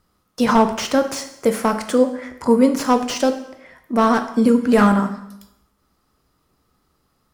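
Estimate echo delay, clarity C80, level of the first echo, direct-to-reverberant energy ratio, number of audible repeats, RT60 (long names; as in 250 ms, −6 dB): no echo audible, 13.5 dB, no echo audible, 7.0 dB, no echo audible, 0.80 s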